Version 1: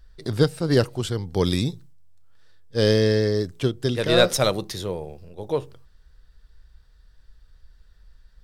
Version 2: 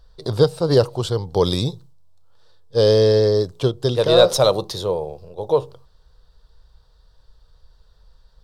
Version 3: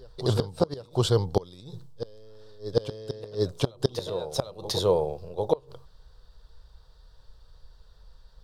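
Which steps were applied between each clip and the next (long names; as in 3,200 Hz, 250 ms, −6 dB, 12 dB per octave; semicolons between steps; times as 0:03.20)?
octave-band graphic EQ 125/250/500/1,000/2,000/4,000 Hz +5/−4/+9/+10/−9/+8 dB; in parallel at 0 dB: brickwall limiter −6.5 dBFS, peak gain reduction 10 dB; on the sum: level −7 dB
gate with flip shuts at −8 dBFS, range −27 dB; backwards echo 748 ms −10.5 dB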